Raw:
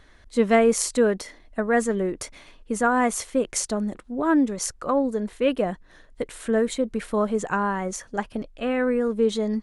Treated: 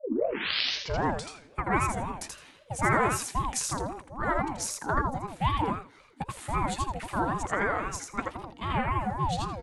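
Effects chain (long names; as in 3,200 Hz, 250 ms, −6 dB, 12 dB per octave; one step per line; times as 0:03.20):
turntable start at the beginning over 1.37 s
low shelf with overshoot 440 Hz −6.5 dB, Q 1.5
tuned comb filter 160 Hz, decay 1.1 s, mix 30%
on a send: repeating echo 82 ms, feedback 18%, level −3 dB
on the sum: ring modulator whose carrier an LFO sweeps 440 Hz, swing 40%, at 3.8 Hz
level +1 dB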